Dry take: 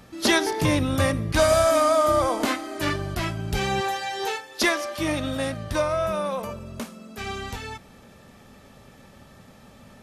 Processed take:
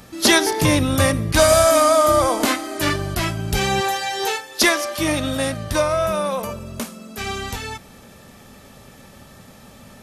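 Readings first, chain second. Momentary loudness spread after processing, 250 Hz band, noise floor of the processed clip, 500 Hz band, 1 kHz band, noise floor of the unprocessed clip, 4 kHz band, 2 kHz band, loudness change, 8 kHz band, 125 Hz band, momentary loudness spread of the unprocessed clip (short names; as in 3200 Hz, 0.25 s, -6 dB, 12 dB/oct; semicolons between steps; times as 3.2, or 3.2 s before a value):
16 LU, +4.5 dB, -45 dBFS, +4.5 dB, +4.5 dB, -50 dBFS, +7.0 dB, +5.0 dB, +5.5 dB, +9.5 dB, +4.5 dB, 17 LU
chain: high shelf 5800 Hz +8 dB; gain +4.5 dB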